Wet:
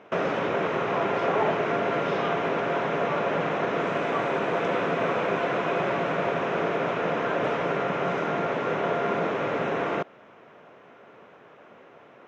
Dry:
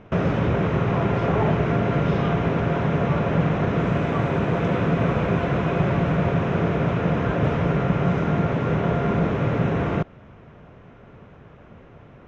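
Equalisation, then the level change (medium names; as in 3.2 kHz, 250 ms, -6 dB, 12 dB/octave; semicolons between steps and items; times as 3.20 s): high-pass 400 Hz 12 dB/octave; +1.0 dB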